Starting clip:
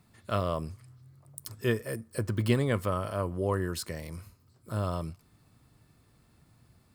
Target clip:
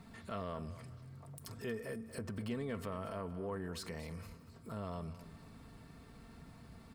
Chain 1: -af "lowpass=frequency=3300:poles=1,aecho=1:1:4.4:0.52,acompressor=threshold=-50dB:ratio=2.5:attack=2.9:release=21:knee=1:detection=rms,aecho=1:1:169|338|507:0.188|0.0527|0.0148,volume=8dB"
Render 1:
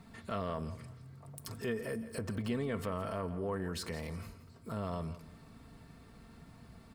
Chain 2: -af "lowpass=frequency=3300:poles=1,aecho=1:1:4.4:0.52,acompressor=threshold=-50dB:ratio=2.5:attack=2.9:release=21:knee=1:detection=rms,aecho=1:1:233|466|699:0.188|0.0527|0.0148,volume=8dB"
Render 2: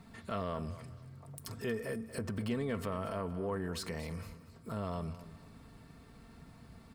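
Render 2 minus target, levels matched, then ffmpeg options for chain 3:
downward compressor: peak gain reduction −4.5 dB
-af "lowpass=frequency=3300:poles=1,aecho=1:1:4.4:0.52,acompressor=threshold=-57.5dB:ratio=2.5:attack=2.9:release=21:knee=1:detection=rms,aecho=1:1:233|466|699:0.188|0.0527|0.0148,volume=8dB"

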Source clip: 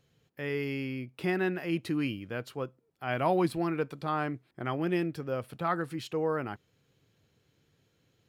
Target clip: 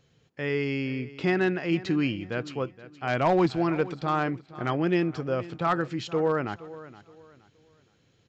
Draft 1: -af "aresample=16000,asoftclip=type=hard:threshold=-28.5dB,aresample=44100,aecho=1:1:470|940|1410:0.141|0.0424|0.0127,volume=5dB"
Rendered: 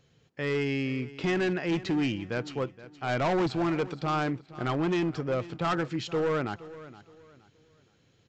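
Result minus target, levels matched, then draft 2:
hard clipping: distortion +13 dB
-af "aresample=16000,asoftclip=type=hard:threshold=-21dB,aresample=44100,aecho=1:1:470|940|1410:0.141|0.0424|0.0127,volume=5dB"

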